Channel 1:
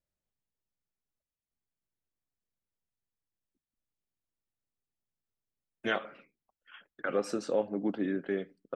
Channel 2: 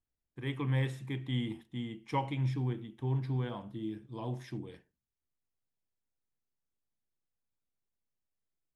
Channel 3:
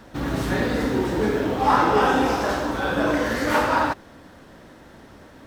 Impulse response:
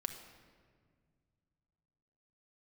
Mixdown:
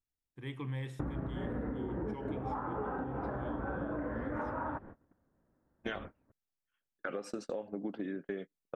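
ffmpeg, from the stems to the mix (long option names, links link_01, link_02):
-filter_complex "[0:a]volume=0.5dB[link_01];[1:a]volume=-5dB,asplit=2[link_02][link_03];[2:a]lowpass=frequency=1600:width=0.5412,lowpass=frequency=1600:width=1.3066,lowshelf=frequency=280:gain=8,adelay=850,volume=1.5dB[link_04];[link_03]apad=whole_len=278590[link_05];[link_04][link_05]sidechaincompress=threshold=-39dB:ratio=8:attack=5.5:release=284[link_06];[link_01][link_06]amix=inputs=2:normalize=0,agate=range=-34dB:threshold=-35dB:ratio=16:detection=peak,acompressor=threshold=-28dB:ratio=2,volume=0dB[link_07];[link_02][link_07]amix=inputs=2:normalize=0,acompressor=threshold=-34dB:ratio=10"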